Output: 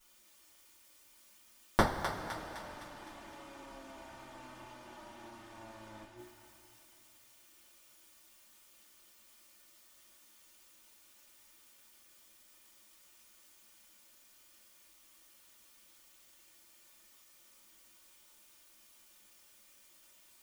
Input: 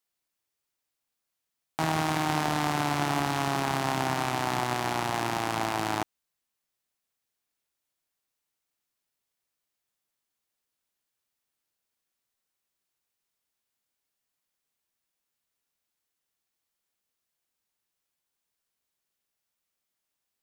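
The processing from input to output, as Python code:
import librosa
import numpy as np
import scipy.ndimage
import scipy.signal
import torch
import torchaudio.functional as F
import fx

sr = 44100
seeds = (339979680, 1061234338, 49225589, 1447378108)

p1 = fx.lower_of_two(x, sr, delay_ms=3.3)
p2 = fx.hum_notches(p1, sr, base_hz=60, count=6)
p3 = fx.gate_flip(p2, sr, shuts_db=-29.0, range_db=-41)
p4 = p3 + fx.echo_thinned(p3, sr, ms=256, feedback_pct=59, hz=920.0, wet_db=-6.0, dry=0)
p5 = fx.rev_double_slope(p4, sr, seeds[0], early_s=0.23, late_s=3.4, knee_db=-19, drr_db=-8.5)
y = p5 * 10.0 ** (12.5 / 20.0)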